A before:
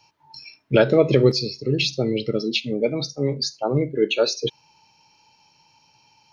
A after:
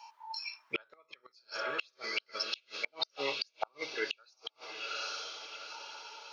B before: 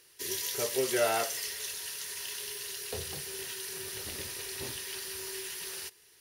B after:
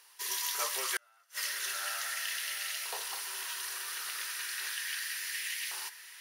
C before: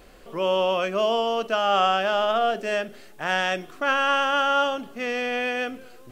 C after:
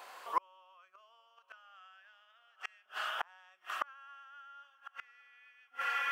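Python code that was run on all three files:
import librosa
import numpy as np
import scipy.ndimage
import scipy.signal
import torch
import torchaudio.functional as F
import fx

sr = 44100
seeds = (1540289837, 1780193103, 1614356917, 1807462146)

y = fx.filter_lfo_highpass(x, sr, shape='saw_up', hz=0.35, low_hz=900.0, high_hz=2100.0, q=3.4)
y = fx.echo_diffused(y, sr, ms=818, feedback_pct=44, wet_db=-14)
y = fx.gate_flip(y, sr, shuts_db=-19.0, range_db=-39)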